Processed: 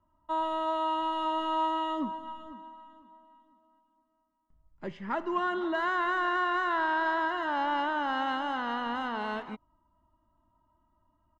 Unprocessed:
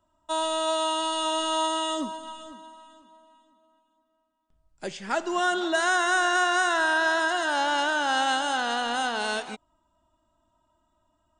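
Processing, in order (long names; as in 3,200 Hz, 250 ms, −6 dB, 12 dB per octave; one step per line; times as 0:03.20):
low-pass filter 1,500 Hz 12 dB per octave
parametric band 750 Hz −11 dB 0.29 octaves
comb filter 1 ms, depth 42%
in parallel at −9 dB: sine wavefolder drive 4 dB, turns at −14 dBFS
on the sum: level −6 dB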